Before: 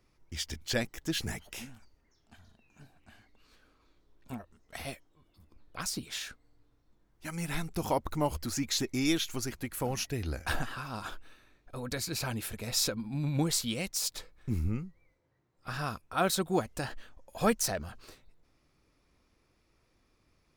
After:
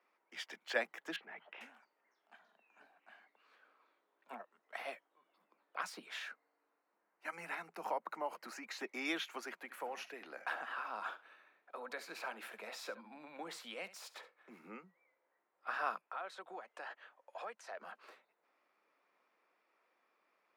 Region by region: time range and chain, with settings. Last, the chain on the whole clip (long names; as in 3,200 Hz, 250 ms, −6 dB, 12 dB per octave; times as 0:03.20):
0:01.16–0:01.61: downward compressor 4 to 1, threshold −41 dBFS + low-pass filter 3,200 Hz 24 dB per octave
0:06.29–0:08.81: notch filter 3,400 Hz, Q 5.3 + downward compressor 3 to 1, threshold −32 dBFS
0:09.61–0:14.64: downward compressor 2 to 1, threshold −36 dBFS + single-tap delay 70 ms −16 dB
0:16.07–0:17.81: low-pass filter 7,900 Hz + parametric band 170 Hz −11.5 dB 1.2 octaves + downward compressor, threshold −40 dBFS
whole clip: Butterworth high-pass 170 Hz 96 dB per octave; three-way crossover with the lows and the highs turned down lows −24 dB, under 510 Hz, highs −20 dB, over 2,600 Hz; level +1.5 dB